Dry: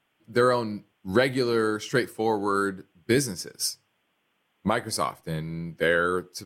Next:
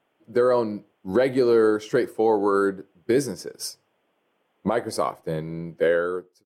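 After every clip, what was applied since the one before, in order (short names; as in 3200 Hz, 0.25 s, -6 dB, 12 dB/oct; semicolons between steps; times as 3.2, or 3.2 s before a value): ending faded out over 0.82 s; bell 500 Hz +13.5 dB 2.4 oct; limiter -6 dBFS, peak gain reduction 7.5 dB; gain -5 dB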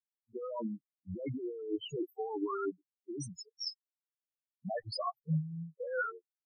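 per-bin expansion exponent 3; negative-ratio compressor -35 dBFS, ratio -1; loudest bins only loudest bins 4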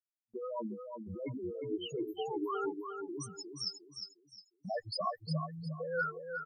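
dynamic EQ 170 Hz, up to -5 dB, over -50 dBFS, Q 0.79; gate with hold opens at -59 dBFS; on a send: feedback echo 0.357 s, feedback 30%, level -6.5 dB; on the sum: gain +1 dB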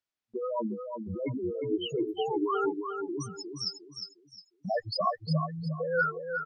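LPF 5400 Hz 12 dB/oct; gain +7 dB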